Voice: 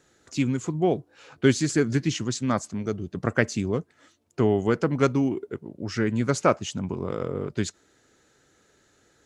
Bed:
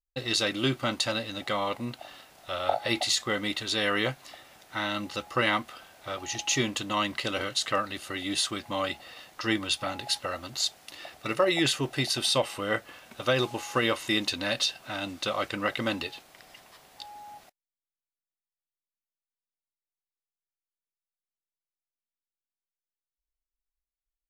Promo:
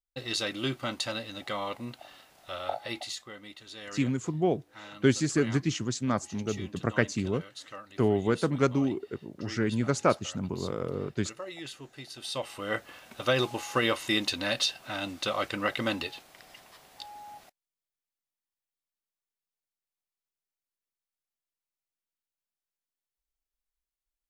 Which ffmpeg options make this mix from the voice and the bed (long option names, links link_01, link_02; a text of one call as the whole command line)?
ffmpeg -i stem1.wav -i stem2.wav -filter_complex "[0:a]adelay=3600,volume=-3.5dB[link_01];[1:a]volume=11.5dB,afade=type=out:start_time=2.5:duration=0.82:silence=0.251189,afade=type=in:start_time=12.15:duration=0.83:silence=0.158489[link_02];[link_01][link_02]amix=inputs=2:normalize=0" out.wav